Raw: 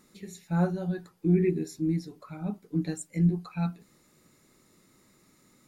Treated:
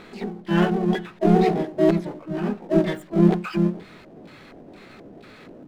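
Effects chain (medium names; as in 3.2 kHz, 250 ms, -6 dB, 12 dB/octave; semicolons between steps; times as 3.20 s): LFO low-pass square 2.1 Hz 310–1800 Hz; power-law waveshaper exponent 0.7; harmony voices +3 st -2 dB, +12 st -2 dB; trim -1.5 dB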